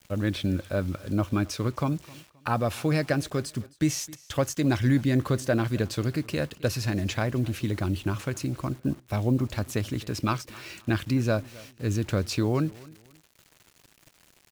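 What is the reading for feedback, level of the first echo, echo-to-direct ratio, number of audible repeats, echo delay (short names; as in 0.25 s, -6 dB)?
31%, -22.0 dB, -21.5 dB, 2, 0.263 s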